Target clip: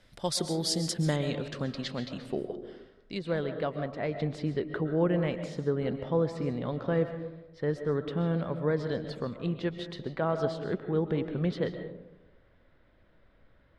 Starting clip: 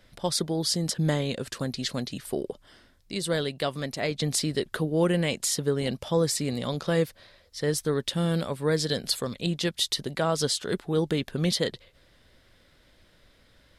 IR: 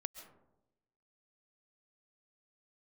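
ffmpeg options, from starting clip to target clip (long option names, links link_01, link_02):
-filter_complex "[0:a]asetnsamples=nb_out_samples=441:pad=0,asendcmd='1.16 lowpass f 3600;3.19 lowpass f 1700',lowpass=11000[link_01];[1:a]atrim=start_sample=2205[link_02];[link_01][link_02]afir=irnorm=-1:irlink=0"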